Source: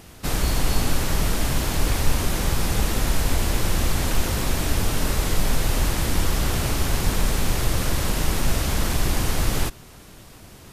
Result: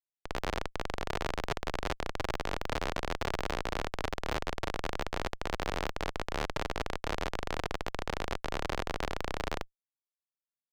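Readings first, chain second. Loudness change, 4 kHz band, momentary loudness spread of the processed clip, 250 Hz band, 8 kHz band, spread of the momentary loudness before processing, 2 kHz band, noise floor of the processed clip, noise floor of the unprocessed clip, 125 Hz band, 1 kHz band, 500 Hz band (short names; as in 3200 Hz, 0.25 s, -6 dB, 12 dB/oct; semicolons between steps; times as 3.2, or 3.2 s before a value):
-12.0 dB, -12.0 dB, 3 LU, -13.5 dB, -21.0 dB, 1 LU, -7.5 dB, under -85 dBFS, -45 dBFS, -17.5 dB, -5.5 dB, -6.5 dB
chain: Schmitt trigger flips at -16 dBFS; three-band isolator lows -16 dB, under 410 Hz, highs -15 dB, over 6200 Hz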